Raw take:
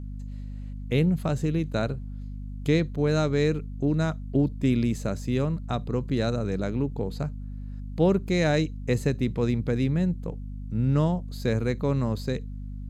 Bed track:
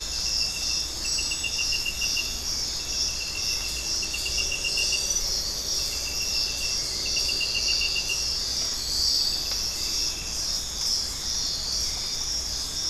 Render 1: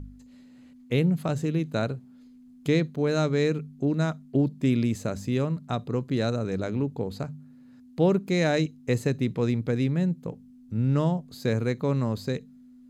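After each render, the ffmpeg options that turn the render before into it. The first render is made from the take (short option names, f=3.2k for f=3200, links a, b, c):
-af "bandreject=f=50:t=h:w=4,bandreject=f=100:t=h:w=4,bandreject=f=150:t=h:w=4,bandreject=f=200:t=h:w=4"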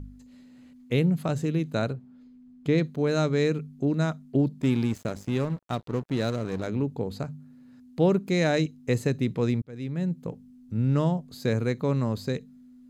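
-filter_complex "[0:a]asettb=1/sr,asplit=3[a][b][c];[a]atrim=end=1.934[d];[b]atrim=start=1.93:end=2.78,asetpts=PTS-STARTPTS,afade=t=in:d=0.004:c=qsin,afade=t=out:st=0.846:d=0.004:c=qsin,lowpass=f=2.2k:p=1[e];[c]atrim=start=2.776[f];[d][e]acrossfade=d=0.004:c1=hsin:c2=qsin[g];[g][f]acrossfade=d=0.004:c1=qsin:c2=hsin,asettb=1/sr,asplit=3[h][i][j];[h]atrim=end=4.624[k];[i]atrim=start=4.62:end=6.67,asetpts=PTS-STARTPTS,afade=t=in:d=0.004:c=qsin,afade=t=out:st=2.046:d=0.004:c=qsin,aeval=exprs='sgn(val(0))*max(abs(val(0))-0.01,0)':c=same[l];[j]atrim=start=6.666[m];[k][l]acrossfade=d=0.004:c1=hsin:c2=qsin[n];[n][m]acrossfade=d=0.004:c1=qsin:c2=hsin,asplit=2[o][p];[o]atrim=end=9.62,asetpts=PTS-STARTPTS,afade=t=out:st=9.616:d=0.004:c=hsin[q];[p]atrim=start=9.62,asetpts=PTS-STARTPTS,afade=t=in:d=0.59[r];[q][r]concat=n=2:v=0:a=1"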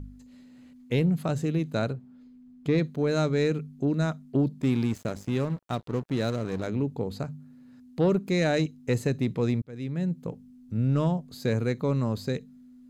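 -af "asoftclip=type=tanh:threshold=-13.5dB"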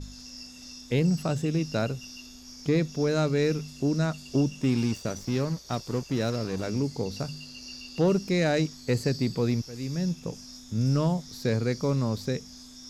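-filter_complex "[1:a]volume=-18.5dB[a];[0:a][a]amix=inputs=2:normalize=0"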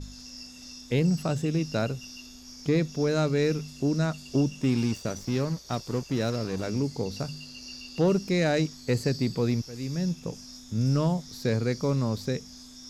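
-af anull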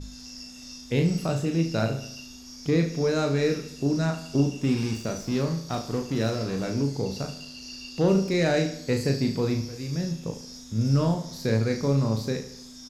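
-filter_complex "[0:a]asplit=2[a][b];[b]adelay=36,volume=-5dB[c];[a][c]amix=inputs=2:normalize=0,aecho=1:1:73|146|219|292|365:0.251|0.128|0.0653|0.0333|0.017"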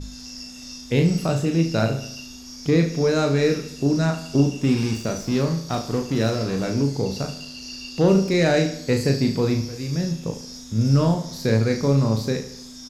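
-af "volume=4.5dB"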